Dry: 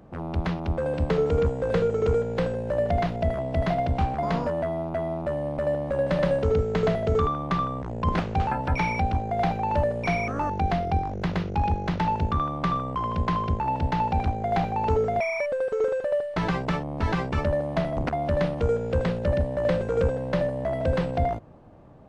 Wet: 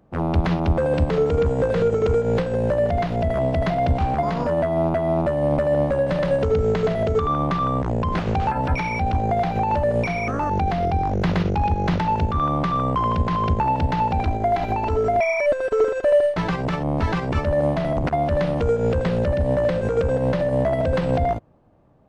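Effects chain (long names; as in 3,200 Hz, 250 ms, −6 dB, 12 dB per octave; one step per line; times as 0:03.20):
0:14.24–0:16.34: comb filter 3 ms, depth 59%
boost into a limiter +24.5 dB
expander for the loud parts 2.5 to 1, over −19 dBFS
level −9 dB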